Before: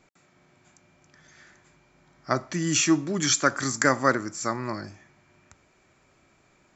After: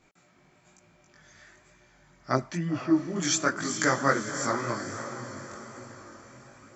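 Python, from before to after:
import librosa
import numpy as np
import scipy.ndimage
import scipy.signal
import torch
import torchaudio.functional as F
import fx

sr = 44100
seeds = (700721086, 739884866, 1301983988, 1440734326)

y = fx.rider(x, sr, range_db=10, speed_s=2.0)
y = fx.env_lowpass_down(y, sr, base_hz=1000.0, full_db=-21.0, at=(2.4, 3.16))
y = fx.echo_diffused(y, sr, ms=510, feedback_pct=53, wet_db=-9.5)
y = fx.chorus_voices(y, sr, voices=2, hz=1.1, base_ms=20, depth_ms=3.6, mix_pct=50)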